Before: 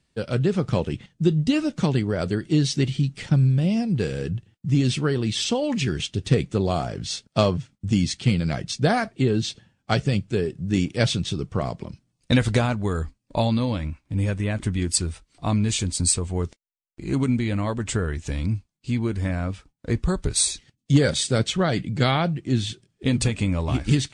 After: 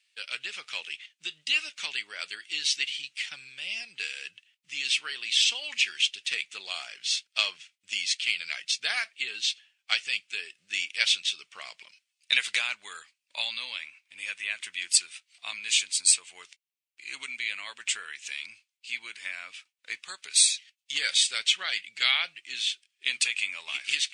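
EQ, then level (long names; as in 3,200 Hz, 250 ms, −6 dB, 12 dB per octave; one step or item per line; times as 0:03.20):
high-pass with resonance 2,500 Hz, resonance Q 2.6
0.0 dB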